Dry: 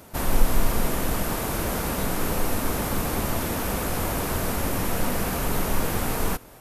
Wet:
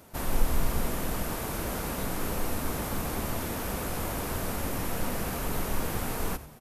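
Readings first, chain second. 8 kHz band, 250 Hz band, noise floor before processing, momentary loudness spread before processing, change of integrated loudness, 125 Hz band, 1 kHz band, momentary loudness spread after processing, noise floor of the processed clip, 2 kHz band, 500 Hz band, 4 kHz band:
-6.0 dB, -6.0 dB, -47 dBFS, 1 LU, -6.0 dB, -5.5 dB, -6.0 dB, 2 LU, -44 dBFS, -6.0 dB, -6.0 dB, -6.0 dB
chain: frequency-shifting echo 90 ms, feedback 43%, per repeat -81 Hz, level -15.5 dB; gain -6 dB

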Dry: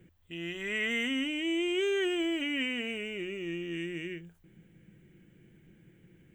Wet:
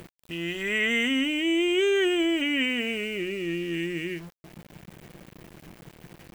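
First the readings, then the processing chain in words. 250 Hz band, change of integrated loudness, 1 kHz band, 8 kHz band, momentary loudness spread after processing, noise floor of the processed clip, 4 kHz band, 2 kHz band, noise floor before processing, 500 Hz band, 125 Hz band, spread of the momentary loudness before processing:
+6.5 dB, +6.5 dB, +7.0 dB, +7.0 dB, 10 LU, -61 dBFS, +6.5 dB, +6.5 dB, -63 dBFS, +6.5 dB, +7.0 dB, 10 LU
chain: in parallel at +1 dB: upward compressor, threshold -38 dBFS; on the sum: sample gate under -43 dBFS

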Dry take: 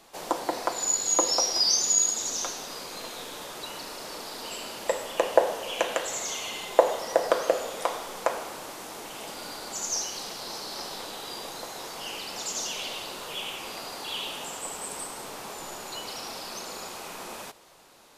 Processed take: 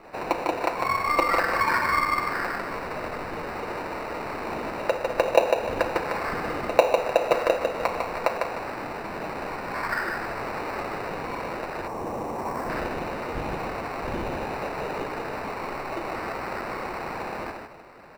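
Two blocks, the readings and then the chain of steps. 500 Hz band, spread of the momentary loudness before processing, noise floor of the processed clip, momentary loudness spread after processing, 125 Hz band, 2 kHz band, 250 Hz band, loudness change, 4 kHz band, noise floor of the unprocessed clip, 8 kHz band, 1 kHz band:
+3.5 dB, 16 LU, -35 dBFS, 10 LU, +14.0 dB, +9.0 dB, +7.5 dB, +1.5 dB, -9.5 dB, -41 dBFS, -20.0 dB, +6.5 dB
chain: nonlinear frequency compression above 3500 Hz 1.5:1; on a send: feedback echo 0.151 s, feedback 27%, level -5 dB; on the sum: sample-rate reducer 3300 Hz, jitter 0%; spectral gain 11.87–12.7, 1200–5300 Hz -10 dB; tone controls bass -1 dB, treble -15 dB; pre-echo 95 ms -17.5 dB; in parallel at +2 dB: compressor, threshold -35 dBFS, peak gain reduction 21 dB

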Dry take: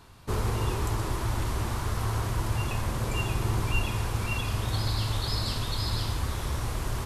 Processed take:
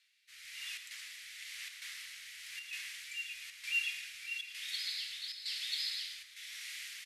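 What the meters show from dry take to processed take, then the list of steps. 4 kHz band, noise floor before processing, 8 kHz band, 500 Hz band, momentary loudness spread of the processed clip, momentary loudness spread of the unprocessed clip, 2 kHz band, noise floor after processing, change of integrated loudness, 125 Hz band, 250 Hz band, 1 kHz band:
-3.0 dB, -34 dBFS, -7.5 dB, under -40 dB, 12 LU, 3 LU, -3.0 dB, -57 dBFS, -9.5 dB, under -40 dB, under -40 dB, under -30 dB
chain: elliptic high-pass 2000 Hz, stop band 60 dB; high shelf 4600 Hz -12 dB; AGC gain up to 7 dB; chopper 1.1 Hz, depth 60%, duty 85%; rotary speaker horn 1 Hz; echo 0.112 s -11.5 dB; gain -2 dB

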